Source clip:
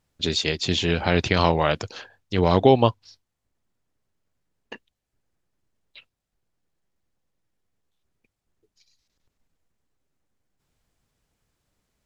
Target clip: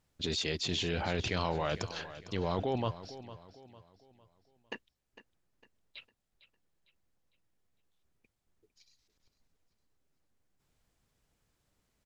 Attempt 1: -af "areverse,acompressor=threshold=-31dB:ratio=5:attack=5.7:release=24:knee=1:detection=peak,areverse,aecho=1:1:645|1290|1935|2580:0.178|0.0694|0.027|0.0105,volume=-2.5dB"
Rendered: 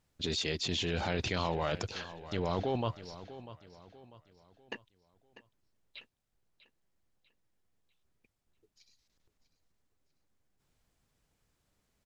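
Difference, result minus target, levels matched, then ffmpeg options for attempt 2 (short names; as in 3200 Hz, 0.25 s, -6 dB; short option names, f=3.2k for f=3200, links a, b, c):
echo 0.191 s late
-af "areverse,acompressor=threshold=-31dB:ratio=5:attack=5.7:release=24:knee=1:detection=peak,areverse,aecho=1:1:454|908|1362|1816:0.178|0.0694|0.027|0.0105,volume=-2.5dB"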